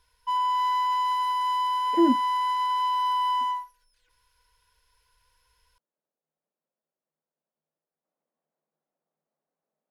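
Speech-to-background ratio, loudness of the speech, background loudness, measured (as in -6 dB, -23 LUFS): 0.0 dB, -25.5 LUFS, -25.5 LUFS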